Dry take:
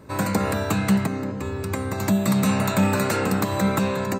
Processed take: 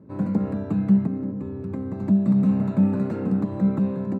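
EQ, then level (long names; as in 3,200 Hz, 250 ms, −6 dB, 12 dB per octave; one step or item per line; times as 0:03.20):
resonant band-pass 210 Hz, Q 1.5
+2.5 dB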